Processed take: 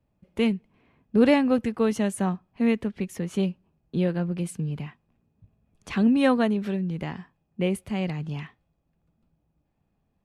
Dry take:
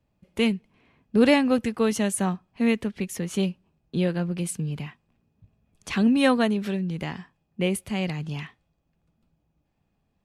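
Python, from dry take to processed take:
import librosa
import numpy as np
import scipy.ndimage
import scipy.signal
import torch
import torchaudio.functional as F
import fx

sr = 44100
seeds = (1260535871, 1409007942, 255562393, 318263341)

y = fx.high_shelf(x, sr, hz=2500.0, db=-8.5)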